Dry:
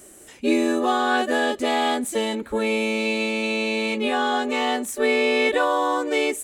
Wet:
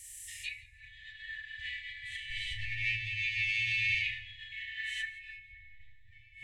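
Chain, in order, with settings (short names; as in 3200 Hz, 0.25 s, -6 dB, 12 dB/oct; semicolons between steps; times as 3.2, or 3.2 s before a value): 2.3–3.95 minimum comb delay 0.33 ms; Schroeder reverb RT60 1.7 s, combs from 30 ms, DRR -2.5 dB; treble ducked by the level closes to 320 Hz, closed at -11.5 dBFS; FFT band-reject 120–1700 Hz; warbling echo 0.17 s, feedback 33%, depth 66 cents, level -21 dB; gain -2 dB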